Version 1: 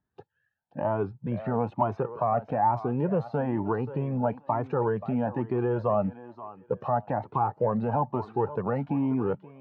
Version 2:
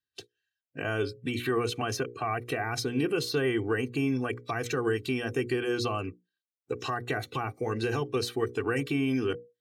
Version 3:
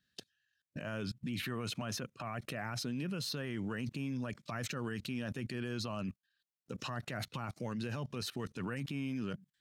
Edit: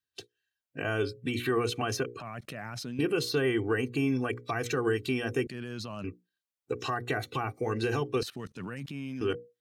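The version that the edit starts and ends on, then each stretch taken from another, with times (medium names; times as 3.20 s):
2
2.20–2.99 s: from 3
5.47–6.04 s: from 3
8.23–9.21 s: from 3
not used: 1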